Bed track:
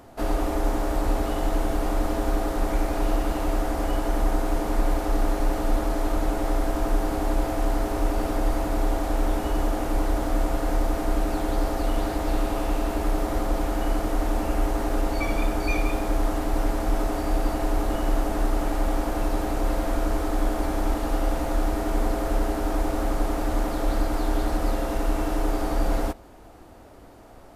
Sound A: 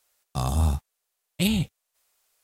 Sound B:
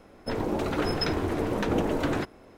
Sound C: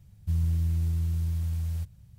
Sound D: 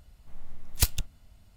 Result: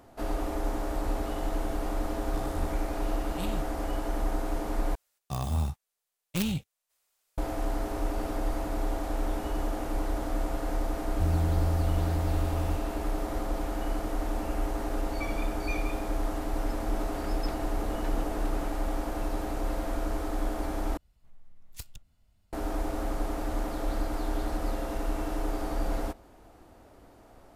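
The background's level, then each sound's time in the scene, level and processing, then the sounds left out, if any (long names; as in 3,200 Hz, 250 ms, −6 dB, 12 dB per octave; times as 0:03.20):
bed track −6.5 dB
0:01.98: mix in A −16 dB
0:04.95: overwrite with A −6 dB + stylus tracing distortion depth 0.32 ms
0:10.92: mix in C −1 dB
0:16.42: mix in B −15.5 dB
0:20.97: overwrite with D −11.5 dB + downward compressor 1.5 to 1, threshold −38 dBFS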